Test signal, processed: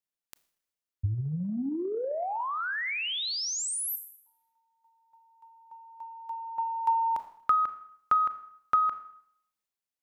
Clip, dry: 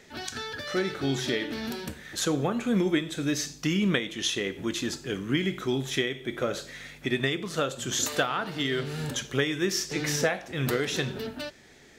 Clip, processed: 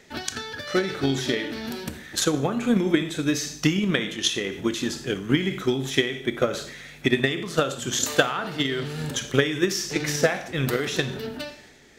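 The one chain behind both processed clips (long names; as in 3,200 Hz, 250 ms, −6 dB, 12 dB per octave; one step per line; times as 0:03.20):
four-comb reverb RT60 0.66 s, combs from 26 ms, DRR 12.5 dB
transient designer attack +9 dB, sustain +5 dB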